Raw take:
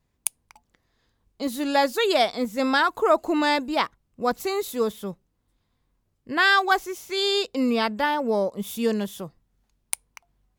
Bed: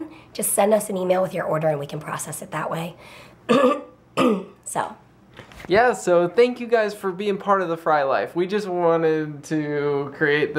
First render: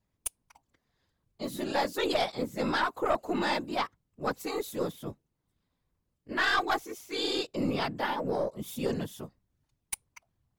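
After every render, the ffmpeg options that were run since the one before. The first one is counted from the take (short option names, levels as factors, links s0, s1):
-af "afftfilt=real='hypot(re,im)*cos(2*PI*random(0))':imag='hypot(re,im)*sin(2*PI*random(1))':win_size=512:overlap=0.75,aeval=exprs='(tanh(7.94*val(0)+0.3)-tanh(0.3))/7.94':c=same"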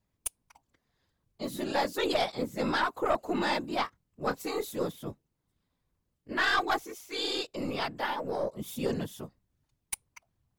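-filter_complex "[0:a]asettb=1/sr,asplit=3[s0][s1][s2];[s0]atrim=end=3.614[s3];[s1]atrim=start=3.61:end=4.72,asetpts=PTS-STARTPTS,afade=t=in:d=0.004:c=qsin,afade=t=out:st=1.106:d=0.004:c=qsin,asplit=2[s4][s5];[s5]adelay=26,volume=0.282[s6];[s4][s6]amix=inputs=2:normalize=0,atrim=end_sample=48951[s7];[s2]atrim=start=4.716[s8];[s3][s7]acrossfade=d=0.004:c1=hsin:c2=qsin[s9];[s9][s8]acrossfade=d=0.004:c1=qsin:c2=hsin,asettb=1/sr,asplit=3[s10][s11][s12];[s10]atrim=end=6.904[s13];[s11]atrim=start=6.9:end=8.43,asetpts=PTS-STARTPTS,afade=t=in:d=0.004:c=qsin,afade=t=out:st=1.526:d=0.004:c=qsin,equalizer=f=170:t=o:w=2.5:g=-6.5[s14];[s12]atrim=start=8.426[s15];[s13][s14]acrossfade=d=0.004:c1=hsin:c2=qsin[s16];[s16][s15]acrossfade=d=0.004:c1=qsin:c2=hsin"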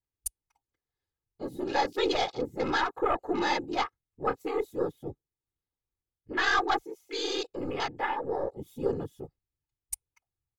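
-af "afwtdn=0.00794,aecho=1:1:2.4:0.57"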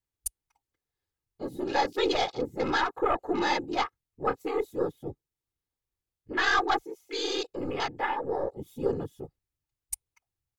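-af "volume=1.12"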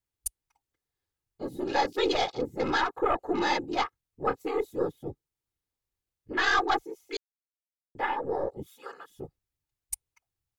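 -filter_complex "[0:a]asettb=1/sr,asplit=3[s0][s1][s2];[s0]atrim=end=8.664[s3];[s1]atrim=start=8.66:end=9.1,asetpts=PTS-STARTPTS,afade=t=in:d=0.004:c=qsin,afade=t=out:st=0.436:d=0.004:c=qsin,highpass=f=1400:t=q:w=2.7[s4];[s2]atrim=start=9.096[s5];[s3][s4]acrossfade=d=0.004:c1=hsin:c2=qsin[s6];[s6][s5]acrossfade=d=0.004:c1=qsin:c2=hsin,asplit=3[s7][s8][s9];[s7]atrim=end=7.17,asetpts=PTS-STARTPTS,afade=t=out:st=7.166:d=0.004:c=hsin[s10];[s8]atrim=start=7.17:end=7.95,asetpts=PTS-STARTPTS,volume=0[s11];[s9]atrim=start=7.95,asetpts=PTS-STARTPTS,afade=t=in:d=0.004:c=hsin[s12];[s10][s11][s12]concat=n=3:v=0:a=1"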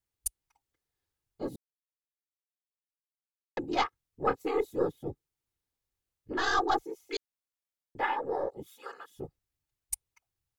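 -filter_complex "[0:a]asettb=1/sr,asplit=3[s0][s1][s2];[s0]atrim=end=6.344[s3];[s1]atrim=start=6.34:end=6.78,asetpts=PTS-STARTPTS,afade=t=in:d=0.004:c=qsin,afade=t=out:st=0.436:d=0.004:c=qsin,equalizer=f=2300:t=o:w=0.81:g=-14[s4];[s2]atrim=start=6.776[s5];[s3][s4]acrossfade=d=0.004:c1=hsin:c2=qsin[s6];[s6][s5]acrossfade=d=0.004:c1=qsin:c2=hsin,asettb=1/sr,asplit=3[s7][s8][s9];[s7]atrim=end=8.034[s10];[s8]atrim=start=8.03:end=9.16,asetpts=PTS-STARTPTS,afade=t=in:d=0.004:c=qsin,afade=t=out:st=1.126:d=0.004:c=qsin,lowshelf=f=250:g=-9.5[s11];[s9]atrim=start=9.156[s12];[s10][s11]acrossfade=d=0.004:c1=hsin:c2=qsin[s13];[s13][s12]acrossfade=d=0.004:c1=qsin:c2=hsin,asplit=3[s14][s15][s16];[s14]atrim=end=1.56,asetpts=PTS-STARTPTS,afade=t=out:st=1.556:d=0.004:c=hsin[s17];[s15]atrim=start=1.56:end=3.57,asetpts=PTS-STARTPTS,volume=0[s18];[s16]atrim=start=3.57,asetpts=PTS-STARTPTS,afade=t=in:d=0.004:c=hsin[s19];[s17][s18][s19]concat=n=3:v=0:a=1"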